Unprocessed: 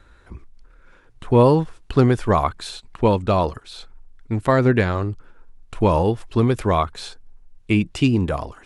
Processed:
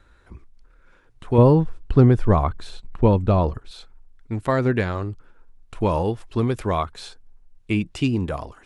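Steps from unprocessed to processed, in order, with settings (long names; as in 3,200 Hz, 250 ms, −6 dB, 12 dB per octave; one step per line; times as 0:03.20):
0:01.38–0:03.71: spectral tilt −2.5 dB per octave
level −4 dB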